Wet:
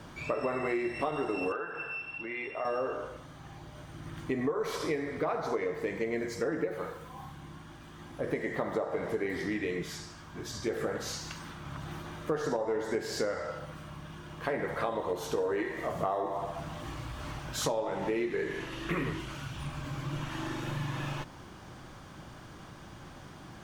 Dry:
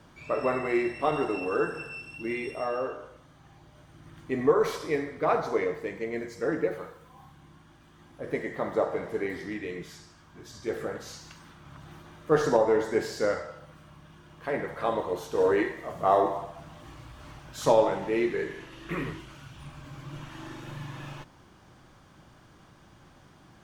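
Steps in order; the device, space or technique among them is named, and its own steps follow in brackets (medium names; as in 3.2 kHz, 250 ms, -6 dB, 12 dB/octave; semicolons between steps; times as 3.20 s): serial compression, peaks first (compression 6:1, threshold -31 dBFS, peak gain reduction 14.5 dB; compression 1.5:1, threshold -42 dBFS, peak gain reduction 5.5 dB); 1.52–2.65 s: three-band isolator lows -12 dB, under 580 Hz, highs -22 dB, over 3.4 kHz; trim +7 dB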